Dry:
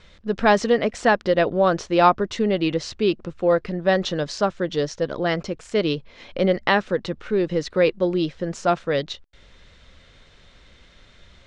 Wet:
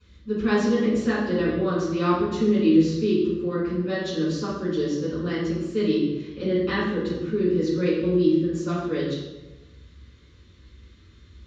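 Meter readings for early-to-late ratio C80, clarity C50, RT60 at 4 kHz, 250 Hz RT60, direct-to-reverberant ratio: 3.0 dB, 0.0 dB, 0.75 s, 1.3 s, -13.5 dB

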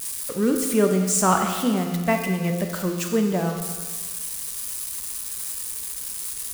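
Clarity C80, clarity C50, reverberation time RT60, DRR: 6.5 dB, 5.5 dB, 1.5 s, 3.5 dB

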